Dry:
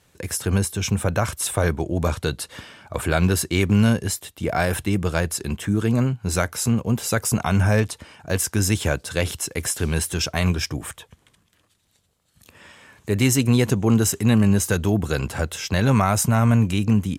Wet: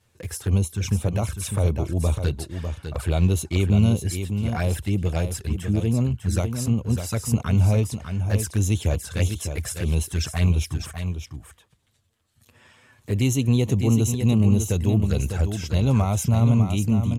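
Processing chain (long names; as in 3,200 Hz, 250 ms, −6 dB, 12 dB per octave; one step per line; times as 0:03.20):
parametric band 63 Hz +9.5 dB 1.5 octaves
flanger swept by the level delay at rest 9.1 ms, full sweep at −14.5 dBFS
single-tap delay 601 ms −7.5 dB
level −4 dB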